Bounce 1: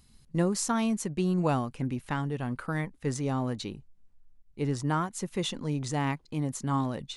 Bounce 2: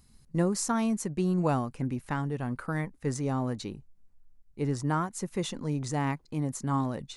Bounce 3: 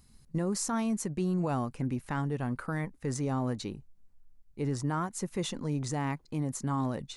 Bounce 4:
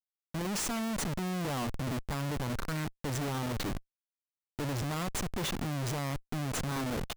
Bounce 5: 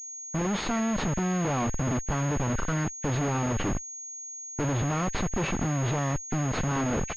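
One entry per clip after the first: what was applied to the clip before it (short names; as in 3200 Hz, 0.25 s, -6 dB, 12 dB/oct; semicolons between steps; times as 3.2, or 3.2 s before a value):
bell 3200 Hz -6 dB 0.8 oct
limiter -22.5 dBFS, peak gain reduction 7 dB
Schmitt trigger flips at -39 dBFS
nonlinear frequency compression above 1500 Hz 1.5:1; low-pass opened by the level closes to 870 Hz, open at -35 dBFS; pulse-width modulation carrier 6600 Hz; gain +6.5 dB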